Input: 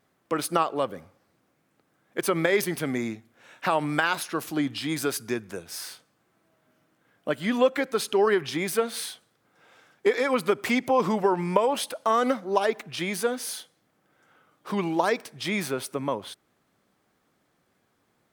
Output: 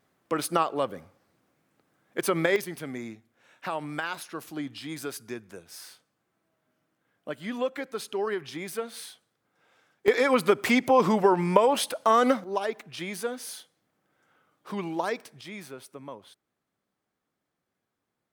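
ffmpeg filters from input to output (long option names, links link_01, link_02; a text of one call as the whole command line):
ffmpeg -i in.wav -af "asetnsamples=nb_out_samples=441:pad=0,asendcmd='2.56 volume volume -8dB;10.08 volume volume 2dB;12.44 volume volume -5.5dB;15.41 volume volume -13dB',volume=-1dB" out.wav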